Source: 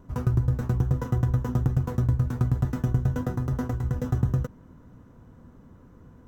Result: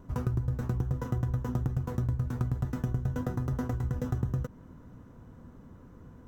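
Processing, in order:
downward compressor 2.5 to 1, threshold −29 dBFS, peak gain reduction 8 dB

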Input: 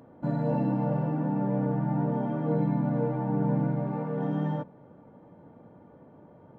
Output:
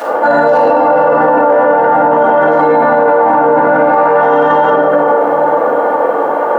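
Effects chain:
high-pass filter 360 Hz 24 dB per octave
flat-topped bell 1,100 Hz +11 dB
gain into a clipping stage and back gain 16.5 dB
high-shelf EQ 2,900 Hz +11 dB
hollow resonant body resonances 510/2,800 Hz, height 10 dB, ringing for 45 ms
on a send: tape delay 467 ms, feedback 74%, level −15 dB, low-pass 1,100 Hz
on the sum: rectangular room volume 440 cubic metres, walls mixed, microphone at 7.7 metres
boost into a limiter +19 dB
level −1 dB

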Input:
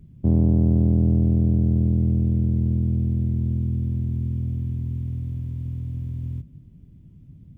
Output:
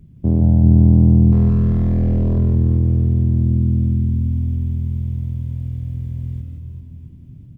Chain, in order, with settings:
0:01.32–0:02.38: hard clipping −21.5 dBFS, distortion −12 dB
reverse bouncing-ball delay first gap 170 ms, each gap 1.3×, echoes 5
level +2.5 dB

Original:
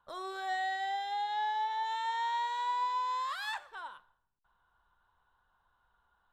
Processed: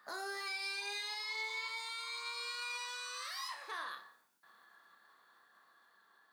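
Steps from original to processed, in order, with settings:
source passing by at 0:02.36, 12 m/s, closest 9.2 metres
downward compressor 10 to 1, threshold −54 dBFS, peak gain reduction 22.5 dB
high-shelf EQ 2,300 Hz +9 dB
formants moved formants +3 semitones
brickwall limiter −51 dBFS, peak gain reduction 10 dB
high-pass filter 240 Hz 24 dB per octave
low-shelf EQ 330 Hz +8 dB
on a send: flutter between parallel walls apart 5.1 metres, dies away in 0.26 s
on the sum: level +16.5 dB

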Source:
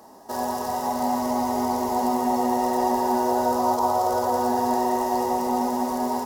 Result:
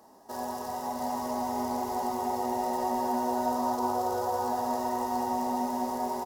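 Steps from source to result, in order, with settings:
single-tap delay 689 ms −5 dB
level −8 dB

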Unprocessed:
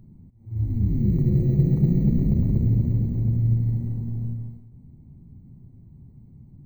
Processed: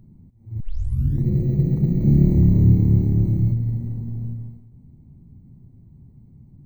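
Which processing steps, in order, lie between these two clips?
0:00.60: tape start 0.65 s
0:01.98–0:03.52: flutter between parallel walls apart 4.8 metres, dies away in 1.2 s

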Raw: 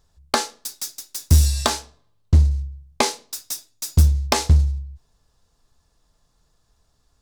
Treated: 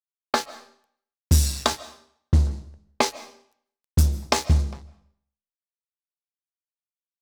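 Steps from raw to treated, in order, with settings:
tape delay 406 ms, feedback 47%, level −21 dB, low-pass 2,300 Hz
low-pass that shuts in the quiet parts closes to 1,700 Hz, open at −12.5 dBFS
high-pass filter 82 Hz 6 dB per octave
dead-zone distortion −30.5 dBFS
on a send at −17 dB: convolution reverb RT60 0.60 s, pre-delay 105 ms

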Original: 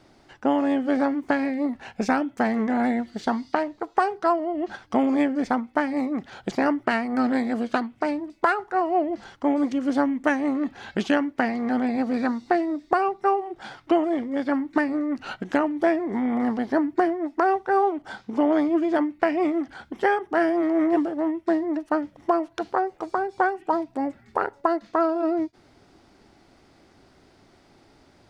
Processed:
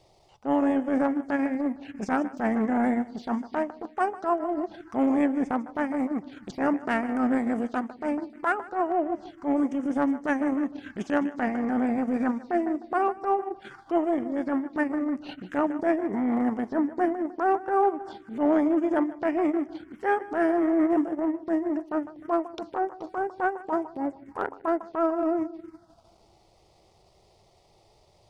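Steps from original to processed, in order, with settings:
echo with a time of its own for lows and highs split 310 Hz, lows 244 ms, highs 153 ms, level −14 dB
phaser swept by the level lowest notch 240 Hz, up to 4,200 Hz, full sweep at −22.5 dBFS
transient designer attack −11 dB, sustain −7 dB

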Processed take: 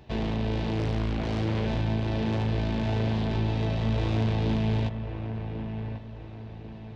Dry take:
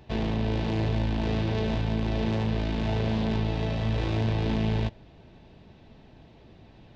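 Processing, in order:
in parallel at −5 dB: soft clipping −27 dBFS, distortion −11 dB
on the sum: delay with a low-pass on its return 1,093 ms, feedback 39%, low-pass 2,200 Hz, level −8 dB
0:00.78–0:01.66: highs frequency-modulated by the lows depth 0.59 ms
level −3.5 dB

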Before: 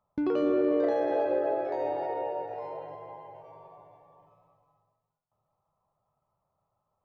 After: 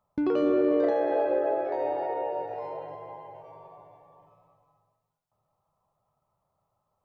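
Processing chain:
0:00.90–0:02.33: bass and treble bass −5 dB, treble −8 dB
level +2 dB

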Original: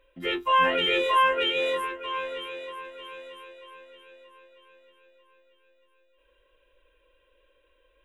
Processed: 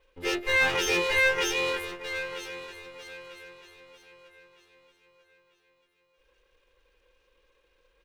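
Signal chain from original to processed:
lower of the sound and its delayed copy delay 2.4 ms
far-end echo of a speakerphone 180 ms, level −14 dB

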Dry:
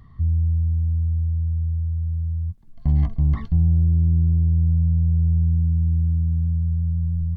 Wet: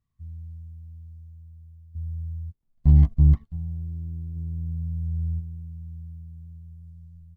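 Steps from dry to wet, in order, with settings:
stylus tracing distortion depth 0.1 ms
0:04.35–0:05.39: parametric band 200 Hz → 69 Hz +3.5 dB 1.5 octaves
bit reduction 10 bits
0:01.95–0:03.44: low-shelf EQ 480 Hz +7.5 dB
expander for the loud parts 2.5 to 1, over −28 dBFS
level −3 dB

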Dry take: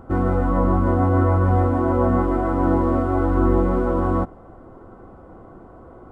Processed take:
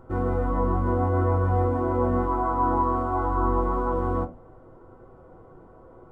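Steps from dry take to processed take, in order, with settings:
0:02.26–0:03.93: octave-band graphic EQ 125/500/1,000/2,000 Hz −6/−5/+10/−5 dB
convolution reverb, pre-delay 6 ms, DRR 6 dB
level −8 dB

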